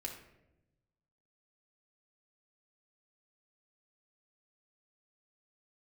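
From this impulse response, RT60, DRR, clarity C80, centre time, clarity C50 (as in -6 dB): 0.90 s, -1.0 dB, 9.5 dB, 27 ms, 6.0 dB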